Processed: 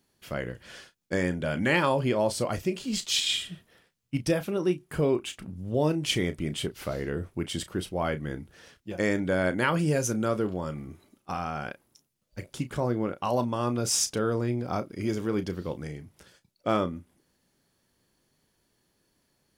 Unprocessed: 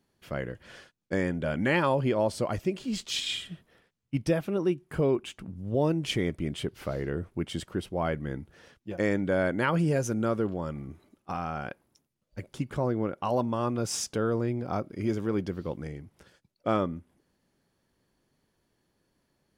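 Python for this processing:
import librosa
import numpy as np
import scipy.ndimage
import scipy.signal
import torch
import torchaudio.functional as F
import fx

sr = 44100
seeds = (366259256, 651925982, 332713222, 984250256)

y = fx.high_shelf(x, sr, hz=3000.0, db=8.0)
y = fx.doubler(y, sr, ms=33.0, db=-12)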